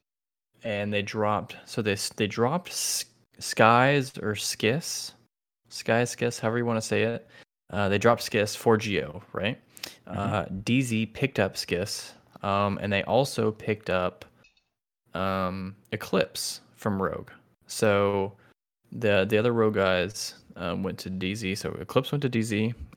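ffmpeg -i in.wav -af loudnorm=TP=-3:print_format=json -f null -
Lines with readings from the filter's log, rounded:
"input_i" : "-27.3",
"input_tp" : "-3.4",
"input_lra" : "4.8",
"input_thresh" : "-37.8",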